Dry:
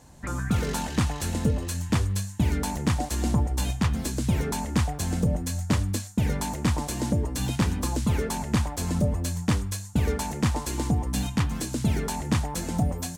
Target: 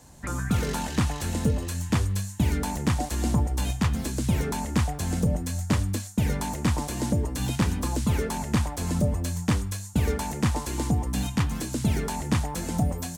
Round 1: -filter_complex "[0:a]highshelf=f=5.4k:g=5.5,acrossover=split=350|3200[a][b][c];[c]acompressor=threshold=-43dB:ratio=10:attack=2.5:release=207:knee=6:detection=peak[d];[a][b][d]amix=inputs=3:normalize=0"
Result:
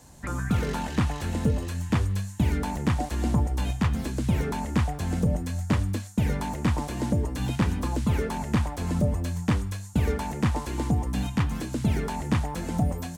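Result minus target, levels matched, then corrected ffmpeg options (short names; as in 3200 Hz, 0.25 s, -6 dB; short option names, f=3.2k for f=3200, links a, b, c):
compressor: peak gain reduction +9.5 dB
-filter_complex "[0:a]highshelf=f=5.4k:g=5.5,acrossover=split=350|3200[a][b][c];[c]acompressor=threshold=-32.5dB:ratio=10:attack=2.5:release=207:knee=6:detection=peak[d];[a][b][d]amix=inputs=3:normalize=0"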